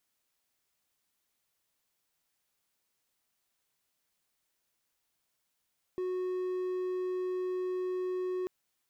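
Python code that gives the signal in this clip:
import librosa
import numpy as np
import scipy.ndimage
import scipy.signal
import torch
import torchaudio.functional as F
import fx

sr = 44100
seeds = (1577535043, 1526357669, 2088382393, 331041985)

y = 10.0 ** (-29.0 / 20.0) * (1.0 - 4.0 * np.abs(np.mod(367.0 * (np.arange(round(2.49 * sr)) / sr) + 0.25, 1.0) - 0.5))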